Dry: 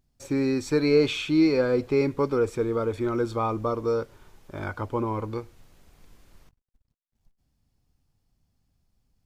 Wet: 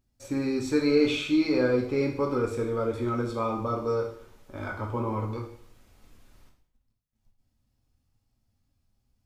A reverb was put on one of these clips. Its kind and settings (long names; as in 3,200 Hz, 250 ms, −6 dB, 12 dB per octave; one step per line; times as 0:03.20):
coupled-rooms reverb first 0.58 s, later 1.5 s, from −27 dB, DRR −0.5 dB
level −4.5 dB